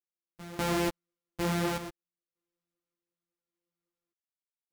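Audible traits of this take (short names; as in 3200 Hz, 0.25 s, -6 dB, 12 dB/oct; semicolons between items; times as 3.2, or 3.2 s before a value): a buzz of ramps at a fixed pitch in blocks of 256 samples; random-step tremolo 1.7 Hz, depth 100%; a shimmering, thickened sound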